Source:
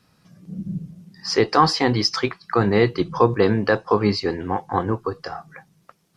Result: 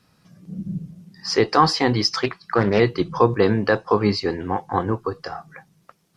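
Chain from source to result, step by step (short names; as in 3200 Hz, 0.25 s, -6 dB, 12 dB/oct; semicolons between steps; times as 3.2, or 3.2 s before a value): 2.15–2.8 Doppler distortion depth 0.35 ms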